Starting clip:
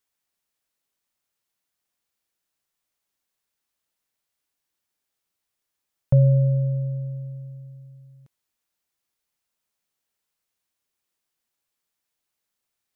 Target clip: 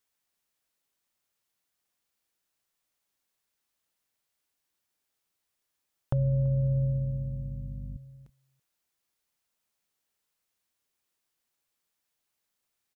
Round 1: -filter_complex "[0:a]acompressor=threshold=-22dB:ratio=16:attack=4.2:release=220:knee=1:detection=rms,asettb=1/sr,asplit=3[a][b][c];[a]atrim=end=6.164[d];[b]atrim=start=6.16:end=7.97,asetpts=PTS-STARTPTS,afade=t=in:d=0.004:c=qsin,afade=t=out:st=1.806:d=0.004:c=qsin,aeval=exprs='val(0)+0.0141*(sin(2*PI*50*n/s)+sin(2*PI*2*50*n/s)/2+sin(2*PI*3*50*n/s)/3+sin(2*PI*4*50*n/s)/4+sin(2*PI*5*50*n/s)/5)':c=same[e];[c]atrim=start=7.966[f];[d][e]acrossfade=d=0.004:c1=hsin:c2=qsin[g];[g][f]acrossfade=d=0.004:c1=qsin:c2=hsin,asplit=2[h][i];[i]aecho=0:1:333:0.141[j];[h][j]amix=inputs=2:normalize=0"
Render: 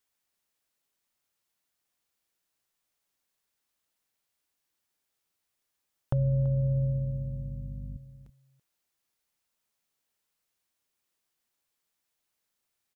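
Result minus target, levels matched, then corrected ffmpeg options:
echo-to-direct +7.5 dB
-filter_complex "[0:a]acompressor=threshold=-22dB:ratio=16:attack=4.2:release=220:knee=1:detection=rms,asettb=1/sr,asplit=3[a][b][c];[a]atrim=end=6.164[d];[b]atrim=start=6.16:end=7.97,asetpts=PTS-STARTPTS,afade=t=in:d=0.004:c=qsin,afade=t=out:st=1.806:d=0.004:c=qsin,aeval=exprs='val(0)+0.0141*(sin(2*PI*50*n/s)+sin(2*PI*2*50*n/s)/2+sin(2*PI*3*50*n/s)/3+sin(2*PI*4*50*n/s)/4+sin(2*PI*5*50*n/s)/5)':c=same[e];[c]atrim=start=7.966[f];[d][e]acrossfade=d=0.004:c1=hsin:c2=qsin[g];[g][f]acrossfade=d=0.004:c1=qsin:c2=hsin,asplit=2[h][i];[i]aecho=0:1:333:0.0596[j];[h][j]amix=inputs=2:normalize=0"

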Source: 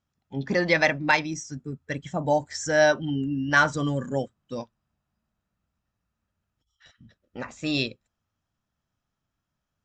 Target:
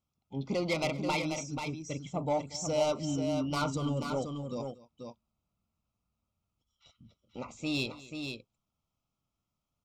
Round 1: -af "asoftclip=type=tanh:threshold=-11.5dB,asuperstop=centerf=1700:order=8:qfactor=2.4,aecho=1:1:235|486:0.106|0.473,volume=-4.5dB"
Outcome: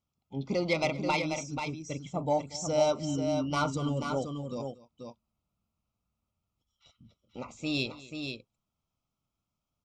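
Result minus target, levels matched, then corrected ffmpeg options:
soft clip: distortion -9 dB
-af "asoftclip=type=tanh:threshold=-19dB,asuperstop=centerf=1700:order=8:qfactor=2.4,aecho=1:1:235|486:0.106|0.473,volume=-4.5dB"

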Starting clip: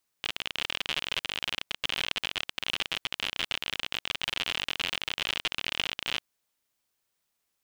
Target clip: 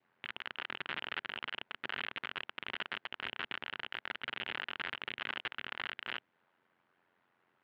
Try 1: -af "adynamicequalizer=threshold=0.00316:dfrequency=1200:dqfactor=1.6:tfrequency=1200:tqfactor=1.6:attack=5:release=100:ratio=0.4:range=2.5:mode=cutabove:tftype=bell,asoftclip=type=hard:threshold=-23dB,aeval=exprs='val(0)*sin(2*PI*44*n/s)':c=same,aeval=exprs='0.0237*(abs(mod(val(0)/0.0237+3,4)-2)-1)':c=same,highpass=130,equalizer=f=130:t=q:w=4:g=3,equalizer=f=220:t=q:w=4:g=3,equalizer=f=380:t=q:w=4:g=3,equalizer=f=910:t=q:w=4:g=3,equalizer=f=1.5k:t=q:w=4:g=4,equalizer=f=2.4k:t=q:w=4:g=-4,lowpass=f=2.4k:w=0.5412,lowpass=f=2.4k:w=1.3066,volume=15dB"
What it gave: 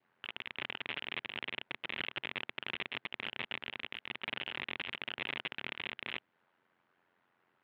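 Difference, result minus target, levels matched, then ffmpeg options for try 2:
hard clip: distortion +9 dB
-af "adynamicequalizer=threshold=0.00316:dfrequency=1200:dqfactor=1.6:tfrequency=1200:tqfactor=1.6:attack=5:release=100:ratio=0.4:range=2.5:mode=cutabove:tftype=bell,asoftclip=type=hard:threshold=-16.5dB,aeval=exprs='val(0)*sin(2*PI*44*n/s)':c=same,aeval=exprs='0.0237*(abs(mod(val(0)/0.0237+3,4)-2)-1)':c=same,highpass=130,equalizer=f=130:t=q:w=4:g=3,equalizer=f=220:t=q:w=4:g=3,equalizer=f=380:t=q:w=4:g=3,equalizer=f=910:t=q:w=4:g=3,equalizer=f=1.5k:t=q:w=4:g=4,equalizer=f=2.4k:t=q:w=4:g=-4,lowpass=f=2.4k:w=0.5412,lowpass=f=2.4k:w=1.3066,volume=15dB"

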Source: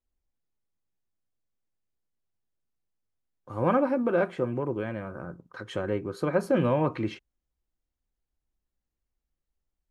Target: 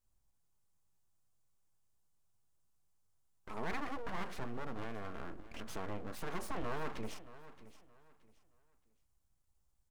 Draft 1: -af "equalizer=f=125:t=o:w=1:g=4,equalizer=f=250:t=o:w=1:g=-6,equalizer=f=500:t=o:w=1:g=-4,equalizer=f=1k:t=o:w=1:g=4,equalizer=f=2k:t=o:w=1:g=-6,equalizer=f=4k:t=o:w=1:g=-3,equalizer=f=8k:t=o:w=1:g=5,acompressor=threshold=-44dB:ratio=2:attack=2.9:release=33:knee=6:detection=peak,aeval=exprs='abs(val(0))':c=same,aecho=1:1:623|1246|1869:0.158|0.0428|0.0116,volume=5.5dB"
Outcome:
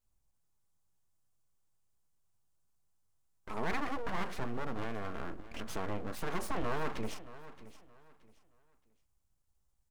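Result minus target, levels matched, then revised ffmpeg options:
compressor: peak gain reduction -4.5 dB
-af "equalizer=f=125:t=o:w=1:g=4,equalizer=f=250:t=o:w=1:g=-6,equalizer=f=500:t=o:w=1:g=-4,equalizer=f=1k:t=o:w=1:g=4,equalizer=f=2k:t=o:w=1:g=-6,equalizer=f=4k:t=o:w=1:g=-3,equalizer=f=8k:t=o:w=1:g=5,acompressor=threshold=-53dB:ratio=2:attack=2.9:release=33:knee=6:detection=peak,aeval=exprs='abs(val(0))':c=same,aecho=1:1:623|1246|1869:0.158|0.0428|0.0116,volume=5.5dB"

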